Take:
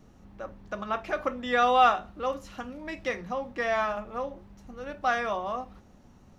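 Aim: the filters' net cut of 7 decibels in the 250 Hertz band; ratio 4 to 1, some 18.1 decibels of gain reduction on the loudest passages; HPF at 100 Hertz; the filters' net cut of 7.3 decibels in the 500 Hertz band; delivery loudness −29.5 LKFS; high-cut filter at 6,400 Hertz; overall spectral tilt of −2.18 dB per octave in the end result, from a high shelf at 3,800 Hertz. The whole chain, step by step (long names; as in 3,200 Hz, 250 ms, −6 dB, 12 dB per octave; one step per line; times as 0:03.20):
high-pass filter 100 Hz
low-pass filter 6,400 Hz
parametric band 250 Hz −6 dB
parametric band 500 Hz −8 dB
high-shelf EQ 3,800 Hz −5 dB
downward compressor 4 to 1, threshold −41 dBFS
level +14.5 dB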